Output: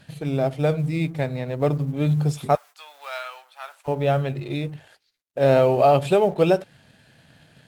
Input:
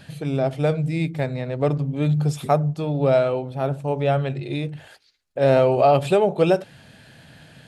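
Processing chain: companding laws mixed up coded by A; 2.55–3.88 s: high-pass 1.1 kHz 24 dB/octave; Vorbis 96 kbps 44.1 kHz

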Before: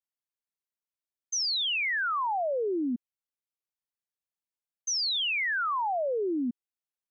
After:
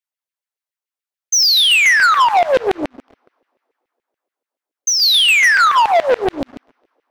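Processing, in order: two-slope reverb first 0.78 s, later 3.1 s, from -22 dB, DRR 11 dB; 2.87–5.02 s: compression 12:1, threshold -31 dBFS, peak gain reduction 5.5 dB; LFO high-pass saw down 7 Hz 400–2500 Hz; waveshaping leveller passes 3; loudspeaker Doppler distortion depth 0.63 ms; trim +7 dB

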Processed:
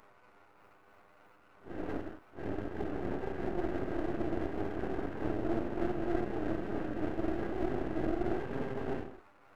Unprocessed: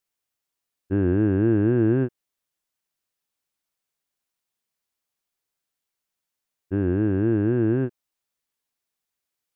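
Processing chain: AM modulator 39 Hz, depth 70%; mains buzz 100 Hz, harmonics 15, -54 dBFS -1 dB/octave; granulator 100 ms, grains 20 per s, pitch spread up and down by 0 st; Paulstretch 6.1×, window 0.05 s, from 0.54 s; tone controls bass -13 dB, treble +8 dB; half-wave rectifier; trim -1 dB

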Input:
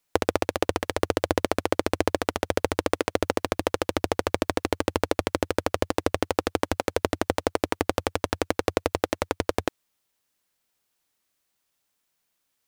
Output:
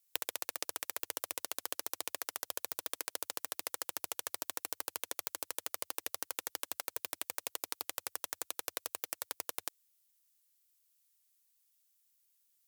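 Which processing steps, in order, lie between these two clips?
Chebyshev shaper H 4 -9 dB, 6 -10 dB, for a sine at -2.5 dBFS; differentiator

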